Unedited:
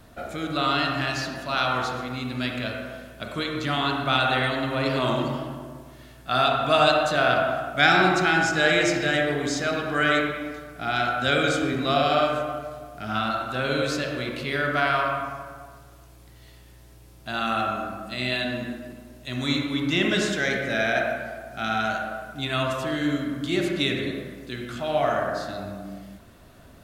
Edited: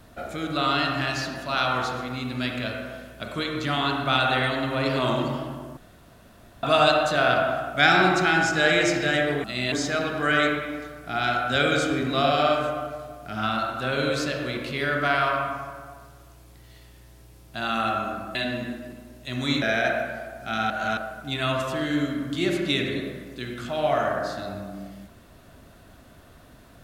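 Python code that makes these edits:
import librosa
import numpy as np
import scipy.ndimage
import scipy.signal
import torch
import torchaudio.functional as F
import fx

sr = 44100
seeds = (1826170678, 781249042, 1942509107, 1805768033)

y = fx.edit(x, sr, fx.room_tone_fill(start_s=5.77, length_s=0.86),
    fx.move(start_s=18.07, length_s=0.28, to_s=9.44),
    fx.cut(start_s=19.62, length_s=1.11),
    fx.reverse_span(start_s=21.81, length_s=0.27), tone=tone)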